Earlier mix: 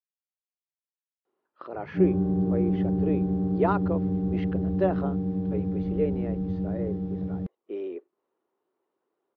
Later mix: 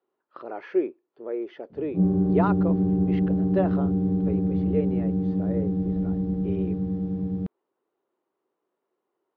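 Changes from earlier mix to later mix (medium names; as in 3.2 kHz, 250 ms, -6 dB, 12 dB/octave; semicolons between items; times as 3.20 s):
speech: entry -1.25 s; background: add peaking EQ 250 Hz +4 dB 1.6 oct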